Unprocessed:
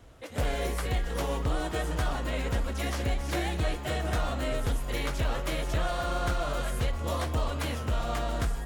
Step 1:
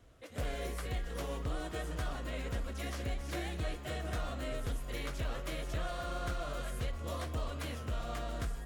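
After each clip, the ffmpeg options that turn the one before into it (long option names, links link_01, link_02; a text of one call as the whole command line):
ffmpeg -i in.wav -af "equalizer=frequency=870:width_type=o:width=0.21:gain=-7.5,volume=-8dB" out.wav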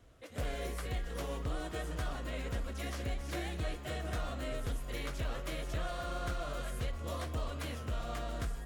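ffmpeg -i in.wav -af anull out.wav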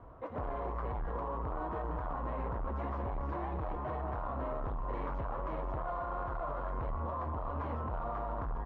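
ffmpeg -i in.wav -af "aresample=16000,asoftclip=type=tanh:threshold=-40dB,aresample=44100,lowpass=frequency=1000:width_type=q:width=4.9,alimiter=level_in=13dB:limit=-24dB:level=0:latency=1:release=45,volume=-13dB,volume=7.5dB" out.wav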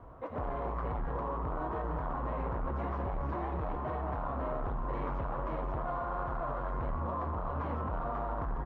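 ffmpeg -i in.wav -filter_complex "[0:a]asplit=8[link_01][link_02][link_03][link_04][link_05][link_06][link_07][link_08];[link_02]adelay=86,afreqshift=100,volume=-13.5dB[link_09];[link_03]adelay=172,afreqshift=200,volume=-17.5dB[link_10];[link_04]adelay=258,afreqshift=300,volume=-21.5dB[link_11];[link_05]adelay=344,afreqshift=400,volume=-25.5dB[link_12];[link_06]adelay=430,afreqshift=500,volume=-29.6dB[link_13];[link_07]adelay=516,afreqshift=600,volume=-33.6dB[link_14];[link_08]adelay=602,afreqshift=700,volume=-37.6dB[link_15];[link_01][link_09][link_10][link_11][link_12][link_13][link_14][link_15]amix=inputs=8:normalize=0,volume=1.5dB" out.wav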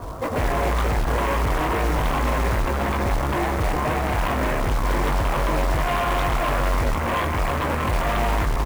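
ffmpeg -i in.wav -filter_complex "[0:a]aeval=exprs='0.0562*sin(PI/2*2.51*val(0)/0.0562)':channel_layout=same,asplit=2[link_01][link_02];[link_02]adelay=20,volume=-8dB[link_03];[link_01][link_03]amix=inputs=2:normalize=0,acrusher=bits=4:mode=log:mix=0:aa=0.000001,volume=5.5dB" out.wav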